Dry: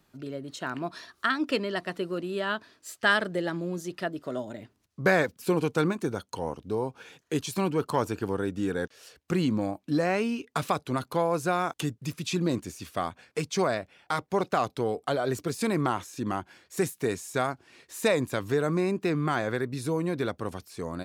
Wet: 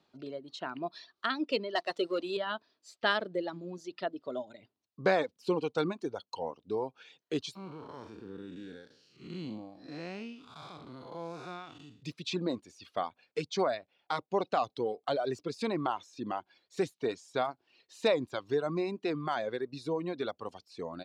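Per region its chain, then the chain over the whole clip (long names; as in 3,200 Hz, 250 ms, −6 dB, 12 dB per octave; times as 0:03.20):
0:01.75–0:02.37: bass and treble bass −14 dB, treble +5 dB + leveller curve on the samples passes 2
0:07.55–0:12.03: spectrum smeared in time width 263 ms + parametric band 640 Hz −10 dB 1.6 octaves
whole clip: high-pass filter 400 Hz 6 dB per octave; reverb reduction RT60 1.7 s; drawn EQ curve 780 Hz 0 dB, 1,700 Hz −8 dB, 4,100 Hz 0 dB, 13,000 Hz −28 dB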